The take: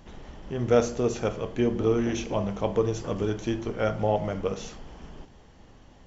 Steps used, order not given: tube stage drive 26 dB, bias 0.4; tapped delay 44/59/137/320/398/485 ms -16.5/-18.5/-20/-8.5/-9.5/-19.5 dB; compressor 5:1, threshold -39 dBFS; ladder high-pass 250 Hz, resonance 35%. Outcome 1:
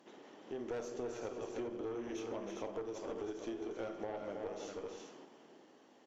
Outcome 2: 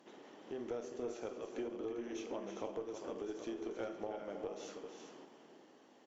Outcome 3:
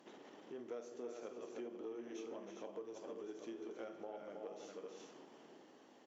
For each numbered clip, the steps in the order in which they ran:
ladder high-pass > tube stage > tapped delay > compressor; ladder high-pass > compressor > tapped delay > tube stage; tapped delay > compressor > tube stage > ladder high-pass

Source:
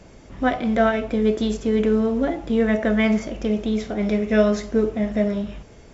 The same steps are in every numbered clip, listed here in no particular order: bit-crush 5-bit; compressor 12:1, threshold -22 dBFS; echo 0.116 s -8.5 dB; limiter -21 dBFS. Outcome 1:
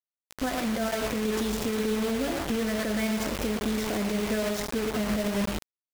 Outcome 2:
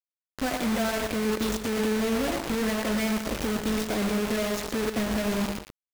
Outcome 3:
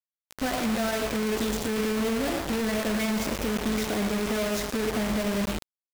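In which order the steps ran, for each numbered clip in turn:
compressor > echo > bit-crush > limiter; compressor > limiter > bit-crush > echo; limiter > echo > compressor > bit-crush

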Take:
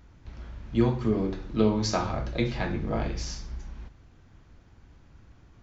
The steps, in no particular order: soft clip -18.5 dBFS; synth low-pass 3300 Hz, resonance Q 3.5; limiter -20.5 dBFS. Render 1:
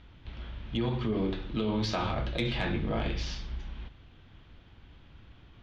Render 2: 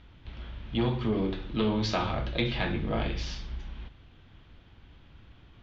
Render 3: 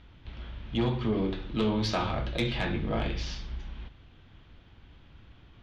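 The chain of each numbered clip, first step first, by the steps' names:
limiter > synth low-pass > soft clip; soft clip > limiter > synth low-pass; synth low-pass > soft clip > limiter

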